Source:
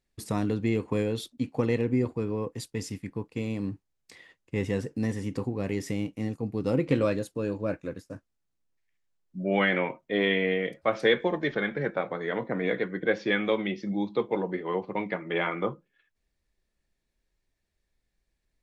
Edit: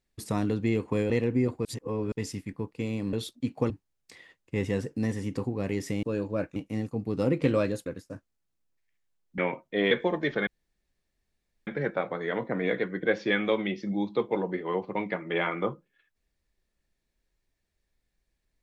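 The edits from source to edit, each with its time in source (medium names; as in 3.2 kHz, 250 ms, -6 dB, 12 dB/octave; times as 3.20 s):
1.10–1.67 s: move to 3.70 s
2.22–2.69 s: reverse
7.33–7.86 s: move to 6.03 s
9.38–9.75 s: delete
10.28–11.11 s: delete
11.67 s: insert room tone 1.20 s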